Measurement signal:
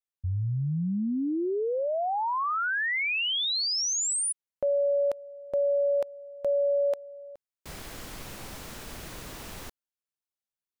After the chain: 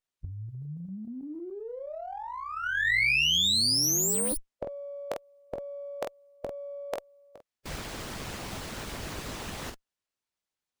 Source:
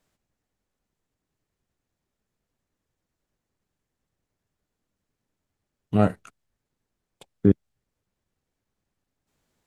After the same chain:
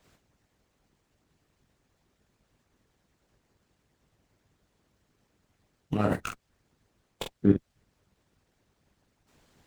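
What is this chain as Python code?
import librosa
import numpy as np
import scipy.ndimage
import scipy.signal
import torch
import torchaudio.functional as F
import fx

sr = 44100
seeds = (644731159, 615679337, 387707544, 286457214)

p1 = fx.room_early_taps(x, sr, ms=(20, 47), db=(-7.5, -5.5))
p2 = fx.over_compress(p1, sr, threshold_db=-30.0, ratio=-0.5)
p3 = p1 + (p2 * librosa.db_to_amplitude(-1.0))
p4 = fx.hpss(p3, sr, part='harmonic', gain_db=-15)
y = fx.running_max(p4, sr, window=3)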